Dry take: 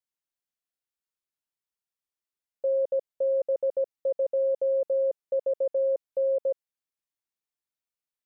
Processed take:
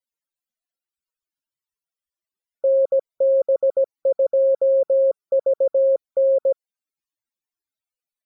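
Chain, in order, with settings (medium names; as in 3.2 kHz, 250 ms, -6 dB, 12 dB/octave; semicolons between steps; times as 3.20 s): loudest bins only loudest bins 64; trim +8 dB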